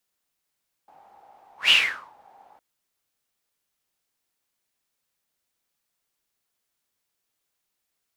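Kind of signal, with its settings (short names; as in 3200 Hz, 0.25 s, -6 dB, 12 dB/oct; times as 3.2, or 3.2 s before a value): whoosh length 1.71 s, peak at 0.82, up 0.14 s, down 0.48 s, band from 800 Hz, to 2900 Hz, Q 9.8, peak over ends 37 dB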